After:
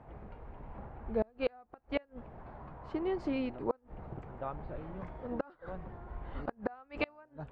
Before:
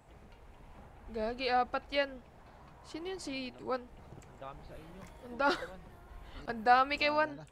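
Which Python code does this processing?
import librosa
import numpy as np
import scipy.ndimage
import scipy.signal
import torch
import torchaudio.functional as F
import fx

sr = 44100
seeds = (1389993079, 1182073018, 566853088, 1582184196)

y = scipy.signal.sosfilt(scipy.signal.butter(2, 1400.0, 'lowpass', fs=sr, output='sos'), x)
y = fx.gate_flip(y, sr, shuts_db=-27.0, range_db=-33)
y = y * librosa.db_to_amplitude(7.5)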